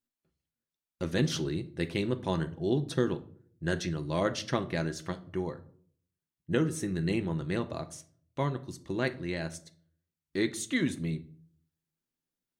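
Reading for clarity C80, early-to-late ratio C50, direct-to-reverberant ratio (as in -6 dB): 21.5 dB, 16.5 dB, 8.5 dB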